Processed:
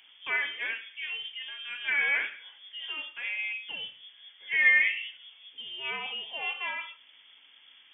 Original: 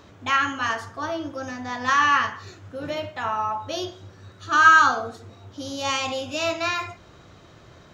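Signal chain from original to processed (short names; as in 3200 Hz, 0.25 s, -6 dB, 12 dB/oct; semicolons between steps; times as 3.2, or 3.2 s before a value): inverted band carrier 3400 Hz; HPF 250 Hz 6 dB/oct; low shelf 420 Hz -10 dB; gain -7.5 dB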